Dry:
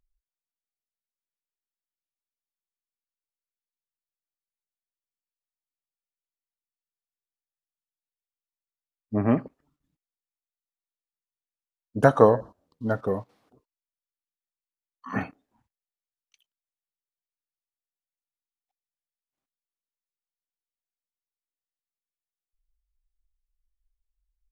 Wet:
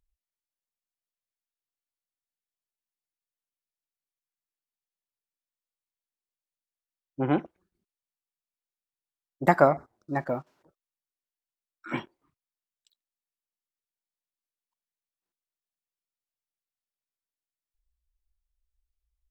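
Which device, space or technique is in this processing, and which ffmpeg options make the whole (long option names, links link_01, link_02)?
nightcore: -af "asetrate=56007,aresample=44100,volume=-2.5dB"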